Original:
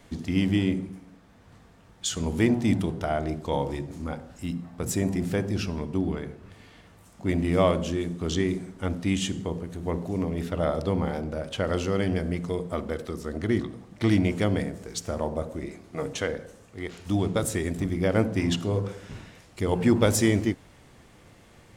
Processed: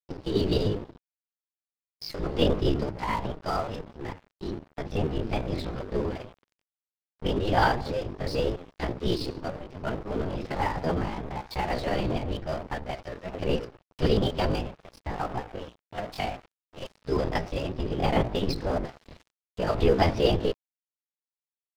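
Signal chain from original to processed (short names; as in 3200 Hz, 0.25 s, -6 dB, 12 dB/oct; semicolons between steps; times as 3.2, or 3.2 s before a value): LPC vocoder at 8 kHz whisper; pitch shift +6.5 st; crossover distortion -40 dBFS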